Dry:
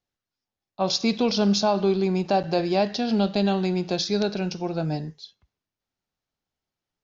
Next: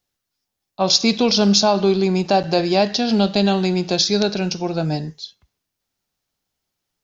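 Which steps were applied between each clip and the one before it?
treble shelf 4.3 kHz +9 dB; trim +5 dB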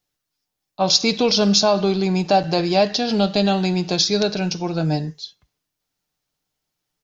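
comb 6.6 ms, depth 35%; trim -1 dB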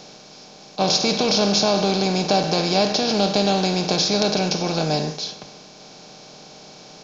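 spectral levelling over time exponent 0.4; trim -6.5 dB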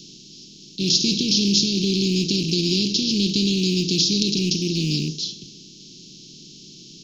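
rattle on loud lows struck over -25 dBFS, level -18 dBFS; Chebyshev band-stop 360–2900 Hz, order 4; trim +2 dB

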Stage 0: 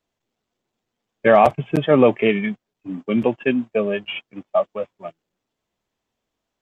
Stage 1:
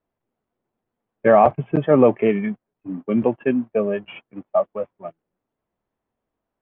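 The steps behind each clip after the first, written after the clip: low-pass 1.5 kHz 12 dB/octave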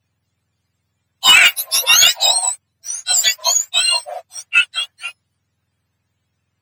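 spectrum inverted on a logarithmic axis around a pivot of 1.3 kHz; sine folder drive 5 dB, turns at -6 dBFS; trim +2.5 dB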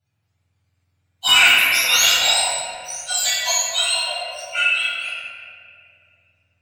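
reverberation RT60 2.4 s, pre-delay 7 ms, DRR -8.5 dB; trim -11.5 dB

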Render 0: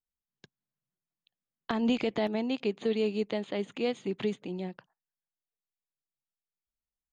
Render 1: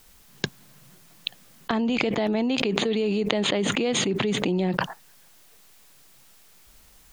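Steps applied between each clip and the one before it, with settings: level flattener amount 100%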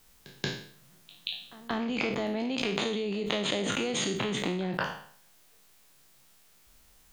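spectral sustain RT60 0.55 s; pre-echo 180 ms -19 dB; trim -8 dB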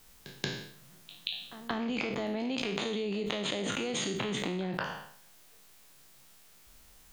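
compression 4:1, threshold -33 dBFS, peak gain reduction 7.5 dB; trim +2.5 dB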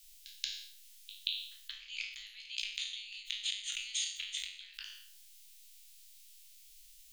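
inverse Chebyshev band-stop 110–560 Hz, stop band 80 dB; trim +1 dB

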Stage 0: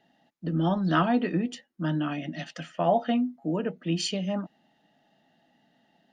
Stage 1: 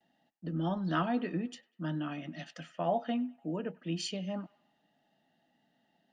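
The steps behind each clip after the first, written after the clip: gate with hold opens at -60 dBFS; feedback echo behind a band-pass 98 ms, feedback 48%, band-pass 1.5 kHz, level -21 dB; trim -7.5 dB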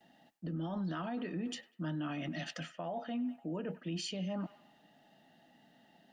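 reverse; compression 6:1, threshold -40 dBFS, peak gain reduction 14 dB; reverse; peak limiter -40 dBFS, peak gain reduction 8.5 dB; trim +9 dB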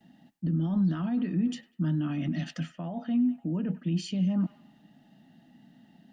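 resonant low shelf 330 Hz +10 dB, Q 1.5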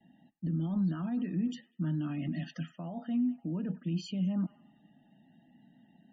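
loudest bins only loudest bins 64; trim -4.5 dB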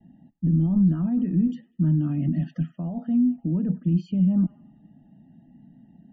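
tilt EQ -4.5 dB/octave

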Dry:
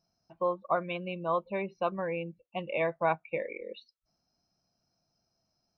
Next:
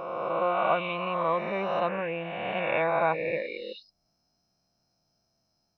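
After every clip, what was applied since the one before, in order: reverse spectral sustain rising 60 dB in 2.18 s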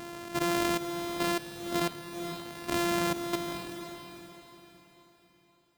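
sorted samples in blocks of 128 samples; level held to a coarse grid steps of 14 dB; echo that smears into a reverb 477 ms, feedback 43%, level -8 dB

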